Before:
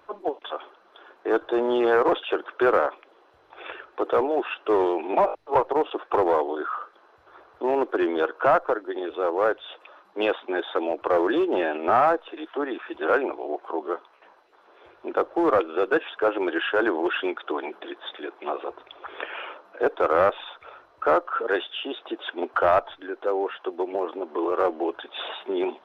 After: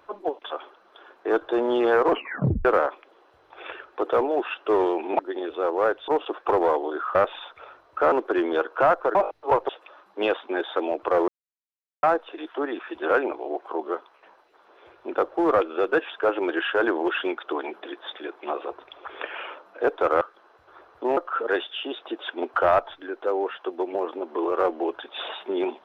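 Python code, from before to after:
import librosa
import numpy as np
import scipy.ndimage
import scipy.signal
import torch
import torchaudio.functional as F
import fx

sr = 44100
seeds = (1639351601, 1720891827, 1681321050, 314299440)

y = fx.edit(x, sr, fx.tape_stop(start_s=2.09, length_s=0.56),
    fx.swap(start_s=5.19, length_s=0.54, other_s=8.79, other_length_s=0.89),
    fx.swap(start_s=6.8, length_s=0.96, other_s=20.2, other_length_s=0.97),
    fx.silence(start_s=11.27, length_s=0.75), tone=tone)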